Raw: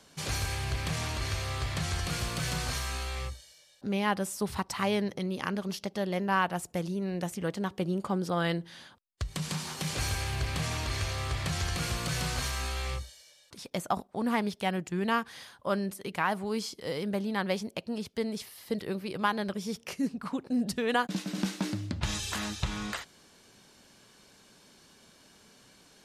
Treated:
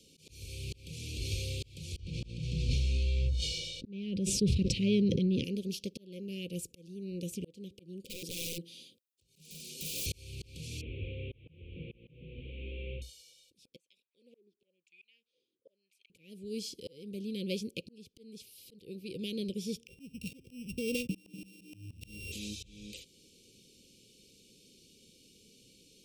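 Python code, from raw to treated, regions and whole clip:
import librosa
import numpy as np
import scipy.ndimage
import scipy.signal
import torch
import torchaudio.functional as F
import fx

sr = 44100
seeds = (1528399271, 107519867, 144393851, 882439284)

y = fx.chain(x, sr, fx.lowpass(hz=5200.0, slope=12),
    fx.bass_treble(bass_db=9, treble_db=-3),
    fx.sustainer(db_per_s=30.0), at=(1.96, 5.44))
y = fx.chain(y, sr, fx.highpass(hz=200.0, slope=12),
    fx.high_shelf(hz=8700.0, db=5.0),
    fx.overflow_wrap(gain_db=29.0), at=(8.05, 10.06))
y = fx.chain(y, sr, fx.delta_mod(bps=16000, step_db=-41.5),
    fx.low_shelf(hz=120.0, db=-7.0), at=(10.81, 13.02))
y = fx.chain(y, sr, fx.tilt_shelf(db=-8.0, hz=1200.0),
    fx.wah_lfo(hz=1.0, low_hz=320.0, high_hz=2500.0, q=6.8), at=(13.76, 16.1))
y = fx.chain(y, sr, fx.sample_sort(block=16),
    fx.low_shelf(hz=120.0, db=9.0),
    fx.band_squash(depth_pct=100), at=(19.87, 22.32))
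y = scipy.signal.sosfilt(scipy.signal.cheby1(5, 1.0, [520.0, 2400.0], 'bandstop', fs=sr, output='sos'), y)
y = fx.auto_swell(y, sr, attack_ms=602.0)
y = F.gain(torch.from_numpy(y), -1.0).numpy()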